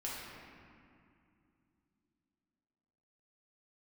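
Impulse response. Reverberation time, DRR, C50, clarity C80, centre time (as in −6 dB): 2.5 s, −6.5 dB, −2.0 dB, 0.5 dB, 133 ms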